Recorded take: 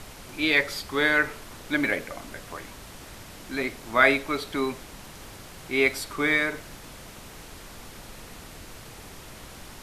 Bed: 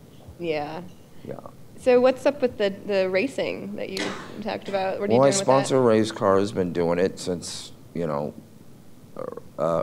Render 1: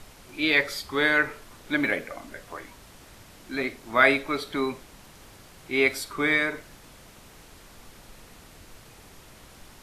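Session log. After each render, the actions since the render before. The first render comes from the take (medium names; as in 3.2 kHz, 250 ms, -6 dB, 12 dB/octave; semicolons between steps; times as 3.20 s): noise print and reduce 6 dB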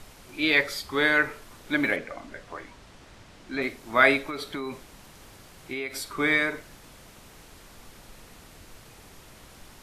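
1.96–3.62 s: distance through air 60 m; 4.29–6.06 s: compression, threshold -29 dBFS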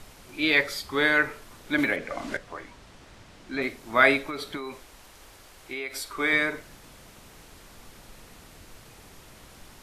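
1.78–2.37 s: three bands compressed up and down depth 100%; 4.57–6.33 s: peaking EQ 160 Hz -10 dB 1.5 oct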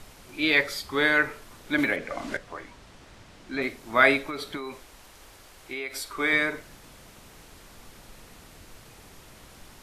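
no audible change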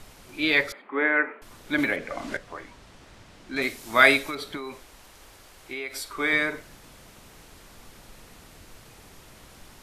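0.72–1.42 s: elliptic band-pass 240–2300 Hz; 3.56–4.35 s: treble shelf 3.2 kHz +11.5 dB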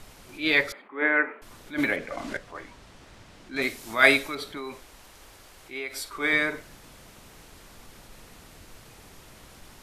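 attacks held to a fixed rise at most 200 dB/s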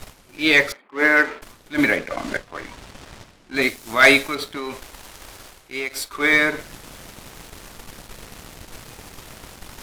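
reverse; upward compressor, threshold -34 dBFS; reverse; waveshaping leveller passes 2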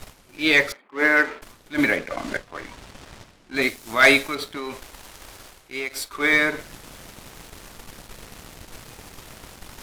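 trim -2 dB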